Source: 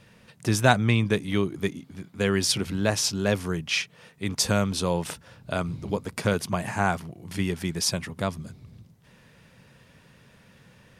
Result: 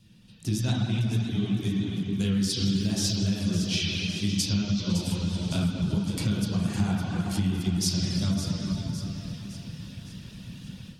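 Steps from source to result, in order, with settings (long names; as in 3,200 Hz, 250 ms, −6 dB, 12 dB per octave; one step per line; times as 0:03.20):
flat-topped bell 960 Hz −16 dB 2.9 octaves
convolution reverb RT60 2.2 s, pre-delay 9 ms, DRR −7.5 dB
automatic gain control gain up to 12 dB
reverb reduction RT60 0.56 s
0:02.74–0:03.15: surface crackle 130 per second → 470 per second −30 dBFS
downward compressor 4 to 1, threshold −21 dBFS, peak gain reduction 12 dB
echo with a time of its own for lows and highs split 1,600 Hz, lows 387 ms, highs 560 ms, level −10 dB
pitch vibrato 7.2 Hz 32 cents
0:04.49–0:04.90: Butterworth low-pass 6,600 Hz 48 dB per octave
level −3.5 dB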